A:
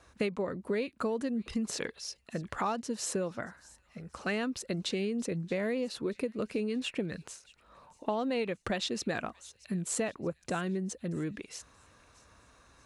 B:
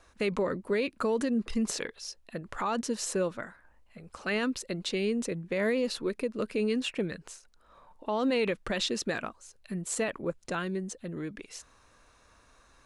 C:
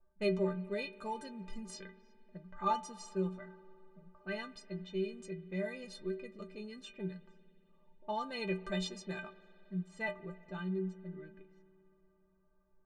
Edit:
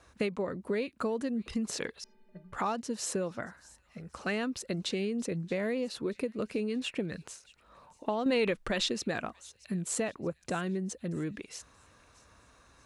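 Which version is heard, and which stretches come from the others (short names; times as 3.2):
A
2.04–2.53 from C
8.26–8.92 from B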